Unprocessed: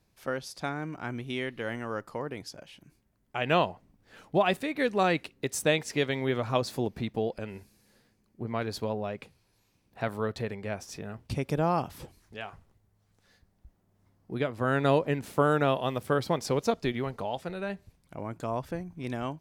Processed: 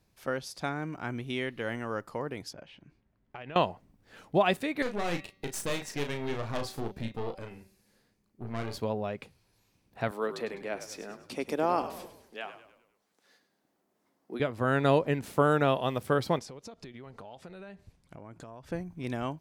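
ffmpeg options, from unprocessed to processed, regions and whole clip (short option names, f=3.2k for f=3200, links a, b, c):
-filter_complex "[0:a]asettb=1/sr,asplit=3[a][b][c];[a]atrim=end=2.534[d];[b]atrim=start=2.53:end=3.56,asetpts=PTS-STARTPTS,afade=t=in:d=0.004:c=qsin,afade=t=out:st=1.026:d=0.004:c=qsin,lowpass=3.3k,acompressor=threshold=-39dB:ratio=8:attack=3.2:release=140:knee=1:detection=peak[e];[c]atrim=start=3.556[f];[d][e]acrossfade=d=0.004:c1=hsin:c2=qsin[g];[g][f]acrossfade=d=0.004:c1=qsin:c2=hsin,asettb=1/sr,asplit=3[h][i][j];[h]atrim=end=4.824[k];[i]atrim=start=4.82:end=8.78,asetpts=PTS-STARTPTS,afade=t=in:d=0.004:c=qsin,afade=t=out:st=3.956:d=0.004:c=qsin,bandreject=f=191.5:t=h:w=4,bandreject=f=383:t=h:w=4,bandreject=f=574.5:t=h:w=4,bandreject=f=766:t=h:w=4,bandreject=f=957.5:t=h:w=4,bandreject=f=1.149k:t=h:w=4,bandreject=f=1.3405k:t=h:w=4,bandreject=f=1.532k:t=h:w=4,bandreject=f=1.7235k:t=h:w=4,bandreject=f=1.915k:t=h:w=4,bandreject=f=2.1065k:t=h:w=4,bandreject=f=2.298k:t=h:w=4,bandreject=f=2.4895k:t=h:w=4,bandreject=f=2.681k:t=h:w=4,bandreject=f=2.8725k:t=h:w=4,bandreject=f=3.064k:t=h:w=4,bandreject=f=3.2555k:t=h:w=4,bandreject=f=3.447k:t=h:w=4,bandreject=f=3.6385k:t=h:w=4,bandreject=f=3.83k:t=h:w=4,bandreject=f=4.0215k:t=h:w=4,bandreject=f=4.213k:t=h:w=4,bandreject=f=4.4045k:t=h:w=4,bandreject=f=4.596k:t=h:w=4,bandreject=f=4.7875k:t=h:w=4,bandreject=f=4.979k:t=h:w=4,bandreject=f=5.1705k:t=h:w=4,bandreject=f=5.362k:t=h:w=4,bandreject=f=5.5535k:t=h:w=4,bandreject=f=5.745k:t=h:w=4,bandreject=f=5.9365k:t=h:w=4,bandreject=f=6.128k:t=h:w=4,bandreject=f=6.3195k:t=h:w=4,bandreject=f=6.511k:t=h:w=4,aeval=exprs='(tanh(28.2*val(0)+0.75)-tanh(0.75))/28.2':c=same,asplit=2[l][m];[m]adelay=35,volume=-6.5dB[n];[l][n]amix=inputs=2:normalize=0,atrim=end_sample=174636[o];[j]atrim=start=8.776[p];[k][o]acrossfade=d=0.004:c1=hsin:c2=qsin[q];[q][p]acrossfade=d=0.004:c1=qsin:c2=hsin,asettb=1/sr,asplit=3[r][s][t];[r]atrim=end=10.114[u];[s]atrim=start=10.11:end=14.4,asetpts=PTS-STARTPTS,afade=t=in:d=0.004:c=qsin,afade=t=out:st=4.286:d=0.004:c=qsin,highpass=f=250:w=0.5412,highpass=f=250:w=1.3066,asplit=6[v][w][x][y][z][aa];[w]adelay=102,afreqshift=-53,volume=-12dB[ab];[x]adelay=204,afreqshift=-106,volume=-18.6dB[ac];[y]adelay=306,afreqshift=-159,volume=-25.1dB[ad];[z]adelay=408,afreqshift=-212,volume=-31.7dB[ae];[aa]adelay=510,afreqshift=-265,volume=-38.2dB[af];[v][ab][ac][ad][ae][af]amix=inputs=6:normalize=0,atrim=end_sample=189189[ag];[t]atrim=start=14.396[ah];[u][ag]acrossfade=d=0.004:c1=hsin:c2=qsin[ai];[ai][ah]acrossfade=d=0.004:c1=qsin:c2=hsin,asettb=1/sr,asplit=3[aj][ak][al];[aj]atrim=end=16.394[am];[ak]atrim=start=16.39:end=18.72,asetpts=PTS-STARTPTS,afade=t=in:d=0.004:c=qsin,afade=t=out:st=2.326:d=0.004:c=qsin,lowpass=9.8k,acompressor=threshold=-42dB:ratio=10:attack=3.2:release=140:knee=1:detection=peak[an];[al]atrim=start=18.716[ao];[am][an]acrossfade=d=0.004:c1=hsin:c2=qsin[ap];[ap][ao]acrossfade=d=0.004:c1=qsin:c2=hsin"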